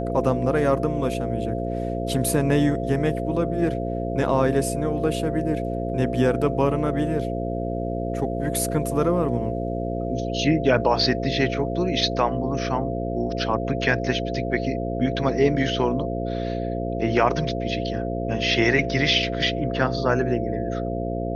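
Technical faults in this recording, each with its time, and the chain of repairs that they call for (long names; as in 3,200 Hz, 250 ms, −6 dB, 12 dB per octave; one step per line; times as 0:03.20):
mains buzz 60 Hz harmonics 9 −28 dBFS
whistle 680 Hz −30 dBFS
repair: notch filter 680 Hz, Q 30
hum removal 60 Hz, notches 9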